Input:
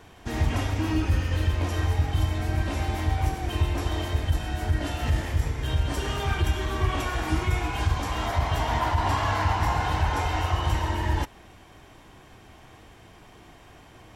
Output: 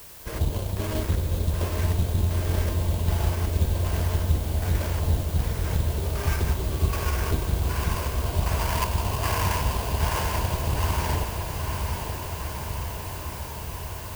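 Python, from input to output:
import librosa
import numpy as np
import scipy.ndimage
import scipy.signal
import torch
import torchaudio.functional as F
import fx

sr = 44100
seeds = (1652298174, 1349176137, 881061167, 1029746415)

p1 = fx.lower_of_two(x, sr, delay_ms=1.9)
p2 = fx.filter_lfo_lowpass(p1, sr, shape='square', hz=1.3, low_hz=750.0, high_hz=2000.0, q=0.71)
p3 = fx.sample_hold(p2, sr, seeds[0], rate_hz=3800.0, jitter_pct=20)
p4 = fx.dmg_noise_colour(p3, sr, seeds[1], colour='white', level_db=-49.0)
p5 = fx.high_shelf(p4, sr, hz=11000.0, db=6.5)
y = p5 + fx.echo_diffused(p5, sr, ms=902, feedback_pct=75, wet_db=-6.0, dry=0)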